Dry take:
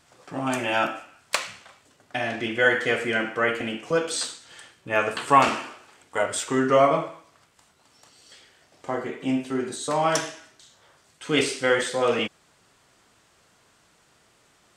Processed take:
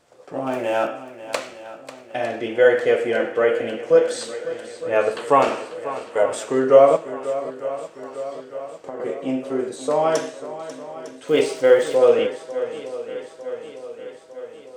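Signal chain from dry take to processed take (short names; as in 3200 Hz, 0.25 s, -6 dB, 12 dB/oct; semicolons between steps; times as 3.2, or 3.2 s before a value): 0.44–0.86 median filter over 9 samples; bell 500 Hz +14.5 dB 1.1 oct; 6.96–9 compressor 4:1, threshold -28 dBFS, peak gain reduction 12.5 dB; on a send: swung echo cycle 0.904 s, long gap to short 1.5:1, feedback 56%, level -14 dB; 11.26–11.96 on the sum: crackle 320/s -30 dBFS; gain -4.5 dB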